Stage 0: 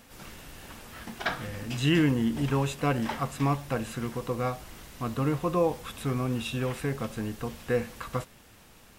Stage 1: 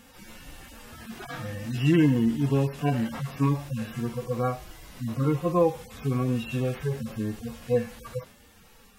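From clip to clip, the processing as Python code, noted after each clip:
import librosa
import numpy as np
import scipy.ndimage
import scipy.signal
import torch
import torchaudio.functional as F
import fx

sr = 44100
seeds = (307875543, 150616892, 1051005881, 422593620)

y = fx.hpss_only(x, sr, part='harmonic')
y = y * 10.0 ** (3.5 / 20.0)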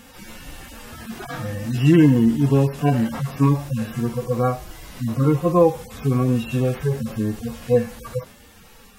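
y = fx.dynamic_eq(x, sr, hz=2700.0, q=0.75, threshold_db=-49.0, ratio=4.0, max_db=-4)
y = y * 10.0 ** (7.0 / 20.0)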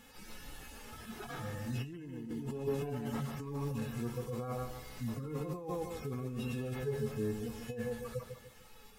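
y = fx.echo_feedback(x, sr, ms=149, feedback_pct=35, wet_db=-8.0)
y = fx.over_compress(y, sr, threshold_db=-22.0, ratio=-1.0)
y = fx.comb_fb(y, sr, f0_hz=430.0, decay_s=0.16, harmonics='all', damping=0.0, mix_pct=80)
y = y * 10.0 ** (-4.5 / 20.0)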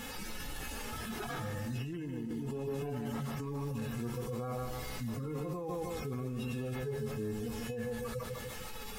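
y = fx.env_flatten(x, sr, amount_pct=70)
y = y * 10.0 ** (-4.5 / 20.0)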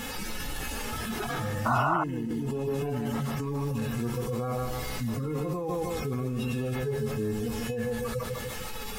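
y = fx.spec_paint(x, sr, seeds[0], shape='noise', start_s=1.65, length_s=0.39, low_hz=590.0, high_hz=1500.0, level_db=-33.0)
y = y * 10.0 ** (7.0 / 20.0)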